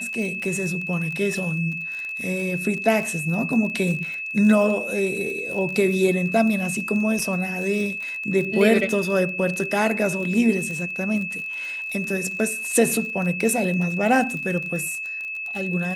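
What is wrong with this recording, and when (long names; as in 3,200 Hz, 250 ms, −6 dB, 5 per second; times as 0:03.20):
surface crackle 30 per second −28 dBFS
whistle 2,600 Hz −28 dBFS
0:07.19: drop-out 3.3 ms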